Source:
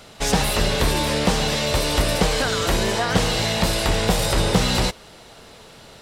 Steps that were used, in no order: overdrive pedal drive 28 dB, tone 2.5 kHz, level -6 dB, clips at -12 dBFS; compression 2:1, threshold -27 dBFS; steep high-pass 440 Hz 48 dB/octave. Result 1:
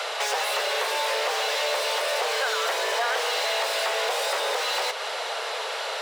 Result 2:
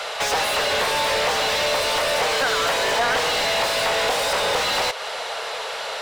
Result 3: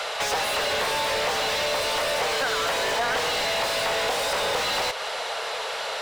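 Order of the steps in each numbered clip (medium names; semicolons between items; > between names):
overdrive pedal > compression > steep high-pass; compression > steep high-pass > overdrive pedal; steep high-pass > overdrive pedal > compression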